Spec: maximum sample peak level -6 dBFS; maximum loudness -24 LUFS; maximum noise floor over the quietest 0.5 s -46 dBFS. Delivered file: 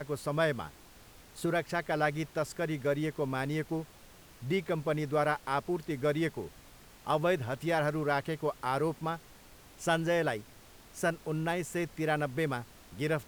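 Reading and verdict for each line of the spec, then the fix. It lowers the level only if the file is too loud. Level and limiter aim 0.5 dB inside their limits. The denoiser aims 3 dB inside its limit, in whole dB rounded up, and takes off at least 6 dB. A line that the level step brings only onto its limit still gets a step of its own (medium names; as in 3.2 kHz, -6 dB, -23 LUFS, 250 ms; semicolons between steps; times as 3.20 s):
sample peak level -15.5 dBFS: pass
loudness -32.5 LUFS: pass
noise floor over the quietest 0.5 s -55 dBFS: pass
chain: none needed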